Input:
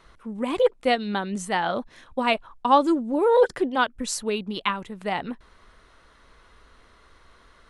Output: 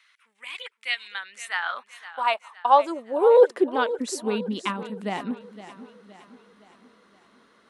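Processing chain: high-pass sweep 2200 Hz -> 220 Hz, 0.93–4.39; warbling echo 0.515 s, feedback 48%, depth 61 cents, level -14.5 dB; gain -4 dB

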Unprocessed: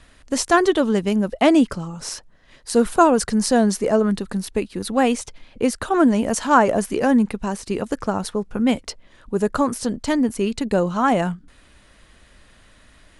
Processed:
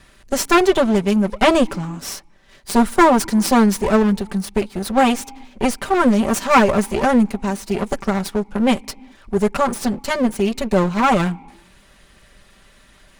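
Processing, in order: minimum comb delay 5.1 ms; on a send: vowel filter u + reverb, pre-delay 3 ms, DRR 27 dB; on the sum: gain +3 dB

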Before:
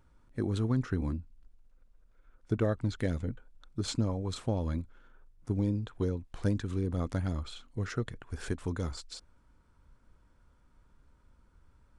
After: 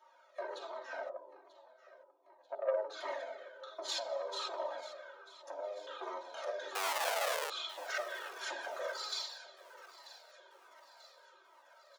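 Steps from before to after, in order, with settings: reverb RT60 0.70 s, pre-delay 3 ms, DRR -9.5 dB; compressor 4:1, threshold -19 dBFS, peak gain reduction 13 dB; 1.09–2.9 steep low-pass 1000 Hz 72 dB/oct; soft clip -20.5 dBFS, distortion -11 dB; comb 3.2 ms, depth 89%; 6.75–7.5 Schmitt trigger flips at -29 dBFS; steep high-pass 490 Hz 48 dB/oct; feedback echo 0.939 s, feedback 53%, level -17 dB; cascading flanger falling 1.3 Hz

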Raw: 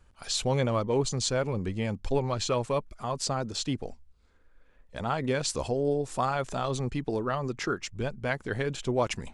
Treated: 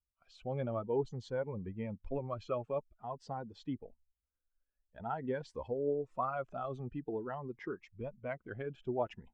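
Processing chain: per-bin expansion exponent 1.5; LPF 1100 Hz 12 dB/oct; low shelf 470 Hz -9.5 dB; AGC gain up to 8 dB; low shelf 140 Hz -4.5 dB; cascading phaser rising 0.49 Hz; gain -5.5 dB

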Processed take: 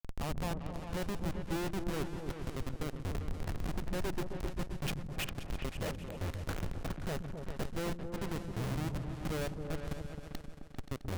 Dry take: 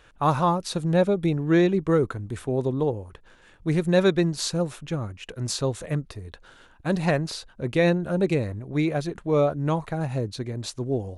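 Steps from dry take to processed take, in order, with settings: flipped gate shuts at -24 dBFS, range -28 dB; Schmitt trigger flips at -46.5 dBFS; repeats that get brighter 0.132 s, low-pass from 200 Hz, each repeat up 2 oct, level -3 dB; gain +11.5 dB

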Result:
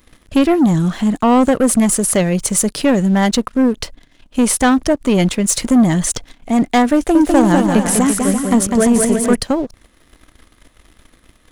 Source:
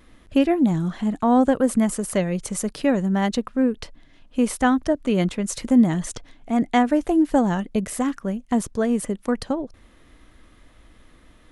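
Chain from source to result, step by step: high shelf 4300 Hz +8 dB; sample leveller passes 2; 6.95–9.35 bouncing-ball echo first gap 0.2 s, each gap 0.7×, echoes 5; gain +1.5 dB

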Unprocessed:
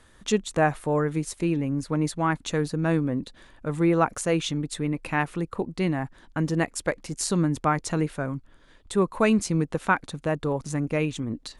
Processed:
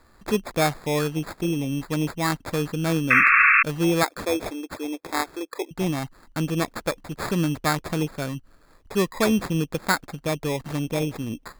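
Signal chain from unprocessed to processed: 4.03–5.71 brick-wall FIR band-pass 280–9400 Hz; sample-and-hold 15×; 3.1–3.63 painted sound noise 1100–2700 Hz -16 dBFS

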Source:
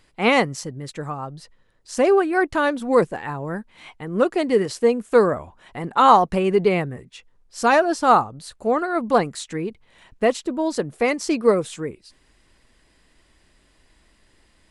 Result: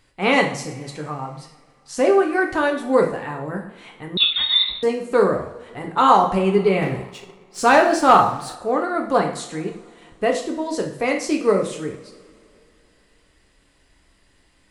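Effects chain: two-slope reverb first 0.54 s, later 2.8 s, from -21 dB, DRR 1.5 dB; 4.17–4.83 inverted band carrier 4000 Hz; 6.82–8.55 sample leveller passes 1; gain -2 dB

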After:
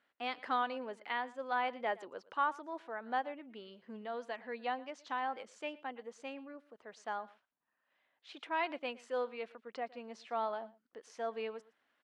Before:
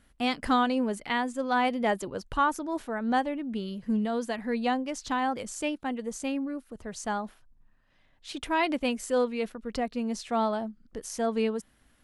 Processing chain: BPF 510–3100 Hz; echo 0.115 s -21 dB; gain -7 dB

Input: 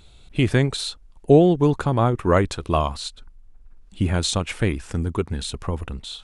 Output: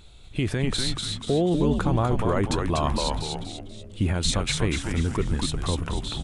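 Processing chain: limiter -15.5 dBFS, peak gain reduction 11.5 dB; frequency-shifting echo 0.243 s, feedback 44%, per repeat -120 Hz, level -3 dB; 2.77–4.04 sustainer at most 32 dB/s

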